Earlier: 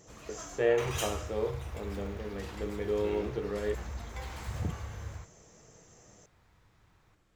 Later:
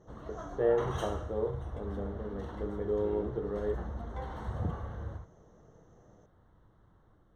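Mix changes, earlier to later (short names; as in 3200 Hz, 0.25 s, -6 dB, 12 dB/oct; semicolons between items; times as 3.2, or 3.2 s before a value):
first sound +6.0 dB; master: add running mean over 18 samples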